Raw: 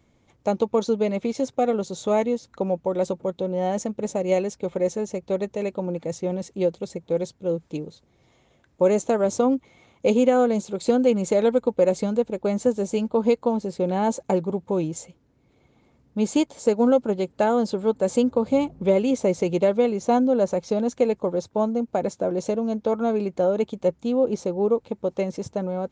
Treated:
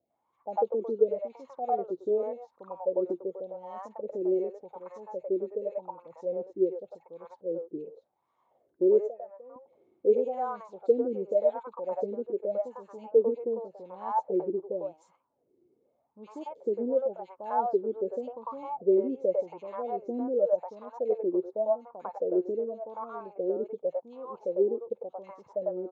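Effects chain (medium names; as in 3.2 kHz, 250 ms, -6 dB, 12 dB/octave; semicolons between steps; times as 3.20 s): wah-wah 0.88 Hz 350–1100 Hz, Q 9.4; 9.07–9.56 s: cascade formant filter e; three bands offset in time lows, highs, mids 50/100 ms, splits 590/2200 Hz; trim +5.5 dB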